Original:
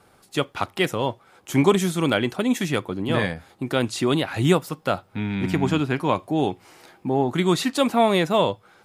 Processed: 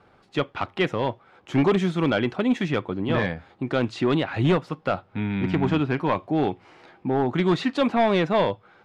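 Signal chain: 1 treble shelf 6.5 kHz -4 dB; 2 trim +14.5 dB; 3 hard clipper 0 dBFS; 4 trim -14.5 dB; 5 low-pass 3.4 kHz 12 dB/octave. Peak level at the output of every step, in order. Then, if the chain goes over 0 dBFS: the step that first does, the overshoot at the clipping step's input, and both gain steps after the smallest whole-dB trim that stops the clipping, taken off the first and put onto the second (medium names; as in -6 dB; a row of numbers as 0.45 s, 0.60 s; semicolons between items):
-5.5 dBFS, +9.0 dBFS, 0.0 dBFS, -14.5 dBFS, -14.0 dBFS; step 2, 9.0 dB; step 2 +5.5 dB, step 4 -5.5 dB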